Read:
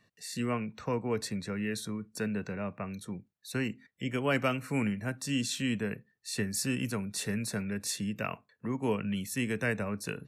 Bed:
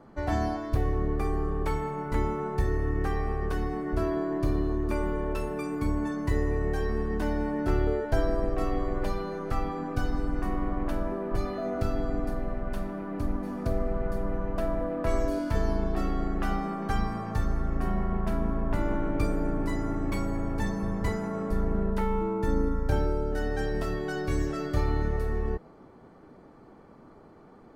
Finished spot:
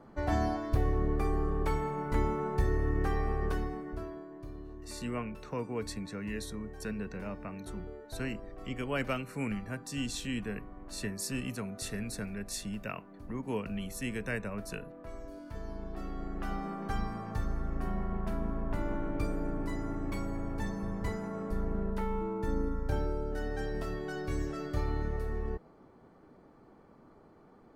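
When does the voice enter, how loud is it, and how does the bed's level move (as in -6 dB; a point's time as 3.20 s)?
4.65 s, -4.5 dB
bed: 3.50 s -2 dB
4.30 s -18 dB
15.23 s -18 dB
16.68 s -6 dB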